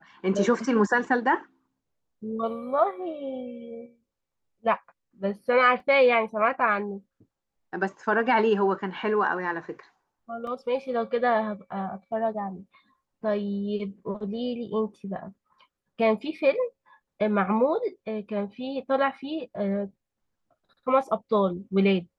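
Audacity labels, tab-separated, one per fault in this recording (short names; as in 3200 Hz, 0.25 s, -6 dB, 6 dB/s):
5.800000	5.800000	gap 2.1 ms
10.470000	10.470000	gap 2.6 ms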